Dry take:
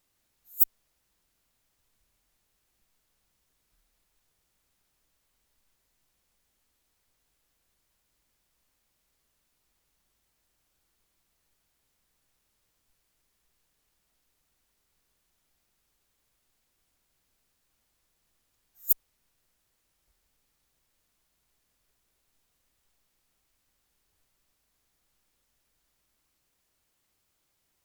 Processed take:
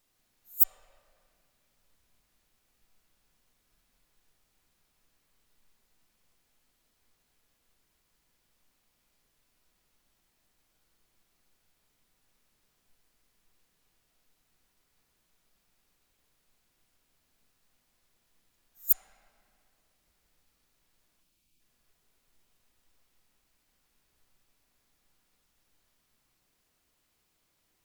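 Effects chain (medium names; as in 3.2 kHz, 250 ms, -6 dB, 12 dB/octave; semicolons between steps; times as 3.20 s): spectral selection erased 21.21–21.60 s, 380–2200 Hz; on a send: low-pass 5.8 kHz 24 dB/octave + reverberation RT60 2.5 s, pre-delay 3 ms, DRR 1 dB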